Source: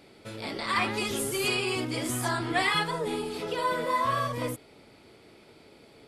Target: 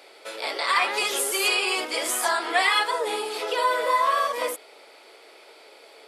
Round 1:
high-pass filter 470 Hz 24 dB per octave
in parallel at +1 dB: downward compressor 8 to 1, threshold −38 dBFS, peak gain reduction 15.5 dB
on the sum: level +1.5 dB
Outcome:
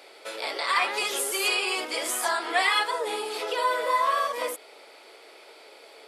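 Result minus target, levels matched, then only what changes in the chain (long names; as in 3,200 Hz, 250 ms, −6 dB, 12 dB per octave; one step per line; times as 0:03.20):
downward compressor: peak gain reduction +8 dB
change: downward compressor 8 to 1, threshold −29 dBFS, peak gain reduction 7.5 dB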